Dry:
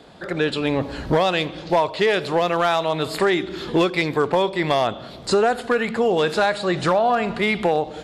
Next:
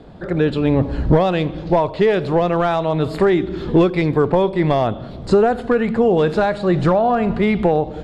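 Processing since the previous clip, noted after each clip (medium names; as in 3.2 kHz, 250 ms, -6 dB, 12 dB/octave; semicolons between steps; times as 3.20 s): tilt EQ -3.5 dB/octave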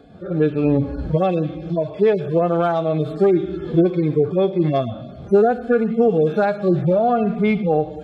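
harmonic-percussive separation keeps harmonic; comb of notches 960 Hz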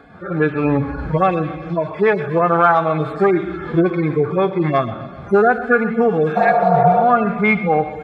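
high-order bell 1.4 kHz +13 dB; feedback delay 128 ms, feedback 58%, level -16 dB; spectral replace 6.39–6.99 s, 270–1600 Hz after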